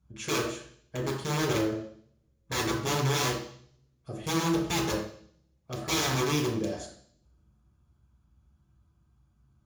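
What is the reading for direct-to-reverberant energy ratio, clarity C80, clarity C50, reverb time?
-7.5 dB, 8.0 dB, 4.5 dB, 0.55 s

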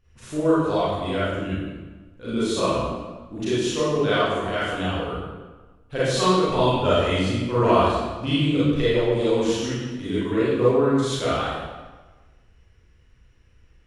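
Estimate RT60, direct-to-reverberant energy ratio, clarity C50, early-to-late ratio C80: 1.3 s, -11.5 dB, -4.5 dB, 0.0 dB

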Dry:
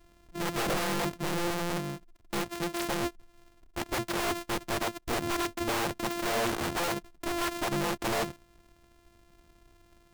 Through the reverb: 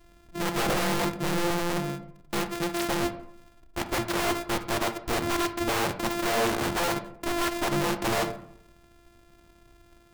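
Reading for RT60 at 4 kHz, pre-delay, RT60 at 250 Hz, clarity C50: 0.40 s, 14 ms, 0.85 s, 12.0 dB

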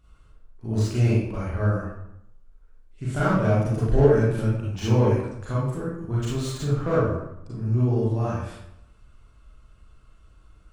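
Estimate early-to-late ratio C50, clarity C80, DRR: -2.0 dB, 3.0 dB, -8.5 dB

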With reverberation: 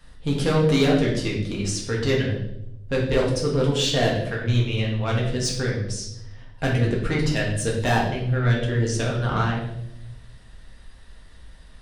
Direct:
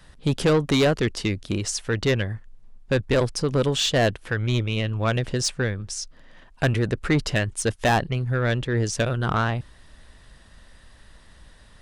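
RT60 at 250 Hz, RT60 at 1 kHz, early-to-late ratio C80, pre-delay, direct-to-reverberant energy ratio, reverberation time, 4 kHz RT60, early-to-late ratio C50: 1.2 s, 0.65 s, 8.0 dB, 4 ms, -3.5 dB, 0.80 s, 0.70 s, 4.5 dB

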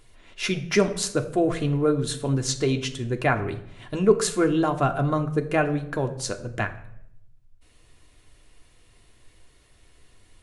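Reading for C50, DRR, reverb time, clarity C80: 13.5 dB, 4.5 dB, 0.75 s, 15.5 dB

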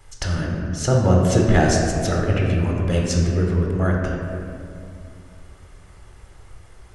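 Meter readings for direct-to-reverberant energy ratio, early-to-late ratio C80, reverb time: -2.0 dB, 2.5 dB, 2.5 s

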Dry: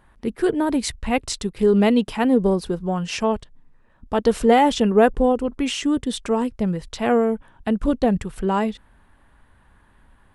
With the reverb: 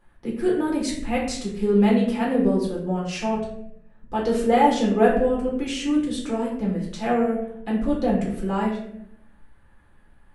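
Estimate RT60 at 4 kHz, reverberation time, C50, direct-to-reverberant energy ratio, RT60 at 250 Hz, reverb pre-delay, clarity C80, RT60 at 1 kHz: 0.50 s, 0.75 s, 4.5 dB, -4.5 dB, 1.1 s, 4 ms, 7.5 dB, 0.65 s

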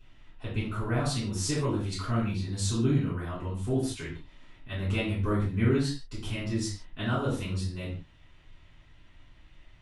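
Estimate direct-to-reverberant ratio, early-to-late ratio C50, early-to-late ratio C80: -11.0 dB, 4.0 dB, 9.0 dB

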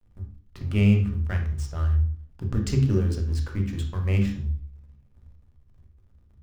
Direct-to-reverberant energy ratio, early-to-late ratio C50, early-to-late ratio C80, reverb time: 2.5 dB, 7.5 dB, 12.5 dB, 0.45 s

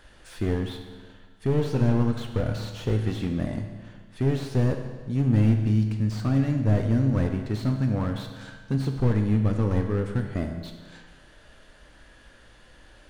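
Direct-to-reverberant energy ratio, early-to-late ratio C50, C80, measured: 4.0 dB, 6.0 dB, 7.5 dB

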